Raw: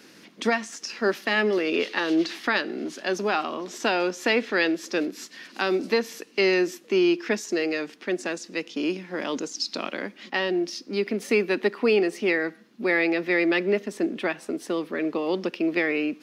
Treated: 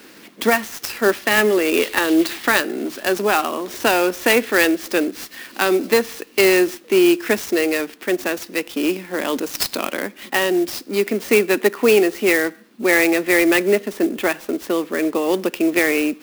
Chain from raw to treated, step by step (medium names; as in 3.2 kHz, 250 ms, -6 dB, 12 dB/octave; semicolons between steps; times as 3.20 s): peaking EQ 140 Hz -7 dB 1 oct; sampling jitter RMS 0.031 ms; trim +7.5 dB